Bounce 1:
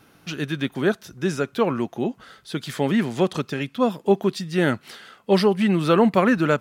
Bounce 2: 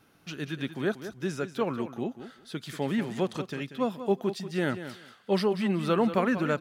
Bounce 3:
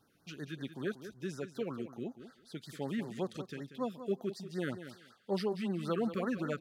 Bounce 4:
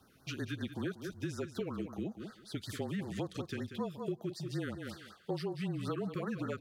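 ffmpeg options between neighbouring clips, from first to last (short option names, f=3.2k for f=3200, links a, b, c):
-af "aecho=1:1:187|374:0.266|0.0452,volume=-8dB"
-af "afftfilt=real='re*(1-between(b*sr/1024,760*pow(2900/760,0.5+0.5*sin(2*PI*5.3*pts/sr))/1.41,760*pow(2900/760,0.5+0.5*sin(2*PI*5.3*pts/sr))*1.41))':imag='im*(1-between(b*sr/1024,760*pow(2900/760,0.5+0.5*sin(2*PI*5.3*pts/sr))/1.41,760*pow(2900/760,0.5+0.5*sin(2*PI*5.3*pts/sr))*1.41))':win_size=1024:overlap=0.75,volume=-8dB"
-af "acompressor=threshold=-40dB:ratio=10,afreqshift=-32,volume=6.5dB"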